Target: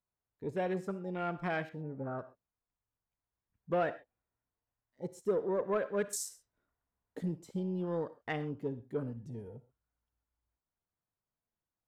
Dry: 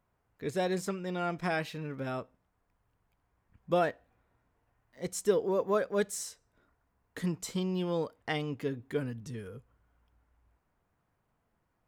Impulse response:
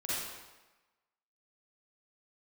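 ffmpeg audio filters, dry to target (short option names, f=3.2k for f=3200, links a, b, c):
-filter_complex "[0:a]afwtdn=0.01,asettb=1/sr,asplit=3[a][b][c];[a]atrim=end=1.694[d];[b]atrim=start=1.69:end=2.19,asetpts=PTS-STARTPTS,afade=t=in:d=0.004:c=qsin,afade=t=out:st=0.496:d=0.004:c=qsin,lowpass=f=1.9k:w=0.5412,lowpass=f=1.9k:w=1.3066[e];[c]atrim=start=2.186[f];[d][e]acrossfade=d=0.004:c1=hsin:c2=qsin[g];[g][f]acrossfade=d=0.004:c1=qsin:c2=hsin,asettb=1/sr,asplit=3[h][i][j];[h]atrim=end=6.044[k];[i]atrim=start=6.04:end=7.23,asetpts=PTS-STARTPTS,afade=t=in:d=0.004:c=qsin,afade=t=out:st=1.186:d=0.004:c=qsin,acontrast=32[l];[j]atrim=start=7.226[m];[k][l]acrossfade=d=0.004:c1=hsin:c2=qsin[n];[n][m]acrossfade=d=0.004:c1=qsin:c2=hsin,asoftclip=type=tanh:threshold=-19.5dB,asplit=2[o][p];[1:a]atrim=start_sample=2205,atrim=end_sample=6174,lowshelf=f=310:g=-8.5[q];[p][q]afir=irnorm=-1:irlink=0,volume=-15.5dB[r];[o][r]amix=inputs=2:normalize=0,volume=-3dB"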